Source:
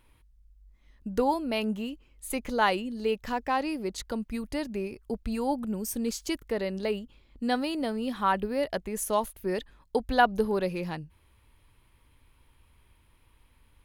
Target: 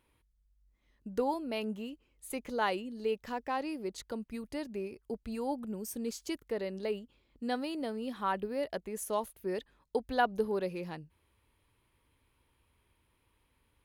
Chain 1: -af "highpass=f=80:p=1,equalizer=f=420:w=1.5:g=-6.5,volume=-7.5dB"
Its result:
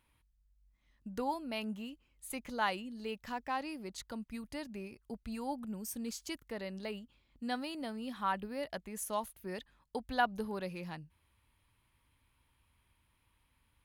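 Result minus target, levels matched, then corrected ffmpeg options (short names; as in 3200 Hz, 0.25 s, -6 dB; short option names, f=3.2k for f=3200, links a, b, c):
500 Hz band -4.0 dB
-af "highpass=f=80:p=1,equalizer=f=420:w=1.5:g=3.5,volume=-7.5dB"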